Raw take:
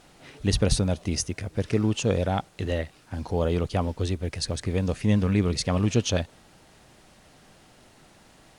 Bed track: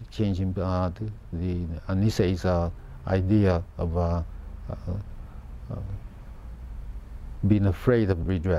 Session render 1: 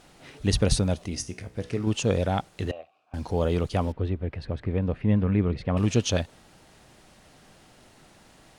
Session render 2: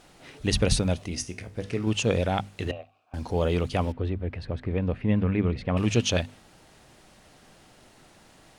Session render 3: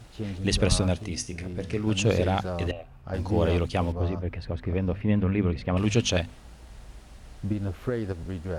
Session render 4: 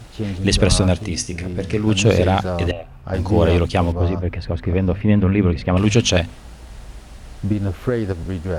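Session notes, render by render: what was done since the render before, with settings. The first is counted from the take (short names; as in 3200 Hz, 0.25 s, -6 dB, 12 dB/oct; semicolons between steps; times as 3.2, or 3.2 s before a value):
1.06–1.87 resonator 61 Hz, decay 0.39 s; 2.71–3.14 vowel filter a; 3.92–5.77 air absorption 490 m
notches 50/100/150/200/250 Hz; dynamic EQ 2500 Hz, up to +5 dB, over -48 dBFS, Q 1.6
add bed track -8 dB
gain +8.5 dB; limiter -3 dBFS, peak gain reduction 2.5 dB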